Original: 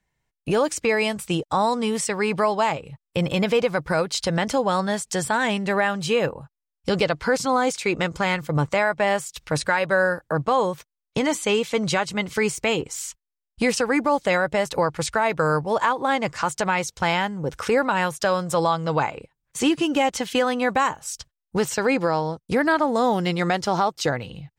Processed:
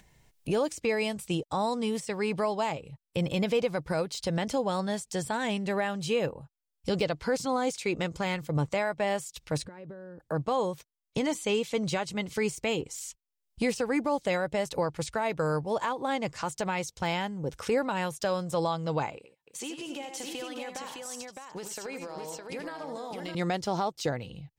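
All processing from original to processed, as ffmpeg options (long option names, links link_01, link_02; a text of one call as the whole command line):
ffmpeg -i in.wav -filter_complex "[0:a]asettb=1/sr,asplit=3[link_01][link_02][link_03];[link_01]atrim=end=9.654[link_04];[link_02]atrim=start=9.65:end=10.2,asetpts=PTS-STARTPTS,afade=type=in:duration=0.004:curve=qsin,afade=type=out:start_time=0.546:duration=0.004:curve=qsin,lowpass=frequency=1200:poles=1,lowshelf=frequency=500:width_type=q:width=1.5:gain=7,acompressor=threshold=-33dB:ratio=16:attack=3.2:release=140:knee=1:detection=peak[link_05];[link_03]atrim=start=10.196[link_06];[link_04][link_05]acrossfade=duration=0.004:curve1=hsin:curve2=qsin[link_07];[link_07][link_06]acrossfade=duration=0.004:curve1=qsin:curve2=hsin,asettb=1/sr,asplit=3[link_08][link_09][link_10];[link_08]atrim=end=19.174[link_11];[link_09]atrim=start=19.17:end=23.35,asetpts=PTS-STARTPTS,afade=type=in:duration=0.004:curve=qsin,afade=type=out:start_time=4.176:duration=0.004:curve=qsin,highpass=frequency=580:poles=1,acompressor=threshold=-28dB:ratio=6:attack=3.2:release=140:knee=1:detection=peak,aecho=1:1:79|94|296|611:0.355|0.237|0.158|0.631,atrim=end_sample=184338[link_12];[link_10]atrim=start=23.346[link_13];[link_11][link_12]acrossfade=duration=0.004:curve1=hsin:curve2=qsin[link_14];[link_14][link_13]acrossfade=duration=0.004:curve1=qsin:curve2=hsin,deesser=0.55,equalizer=frequency=1400:width=1:gain=-6.5,acompressor=mode=upward:threshold=-38dB:ratio=2.5,volume=-5.5dB" out.wav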